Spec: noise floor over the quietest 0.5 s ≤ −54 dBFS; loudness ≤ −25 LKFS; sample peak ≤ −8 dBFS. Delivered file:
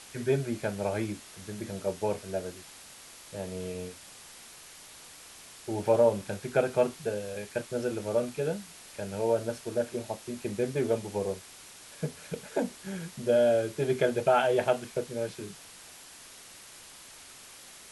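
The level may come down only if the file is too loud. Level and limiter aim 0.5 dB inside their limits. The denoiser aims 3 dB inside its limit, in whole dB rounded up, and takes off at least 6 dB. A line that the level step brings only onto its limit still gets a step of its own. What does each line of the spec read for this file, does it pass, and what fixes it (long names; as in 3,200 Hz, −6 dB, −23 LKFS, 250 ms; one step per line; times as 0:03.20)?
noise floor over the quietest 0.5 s −50 dBFS: out of spec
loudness −30.5 LKFS: in spec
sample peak −11.5 dBFS: in spec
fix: broadband denoise 7 dB, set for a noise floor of −50 dBFS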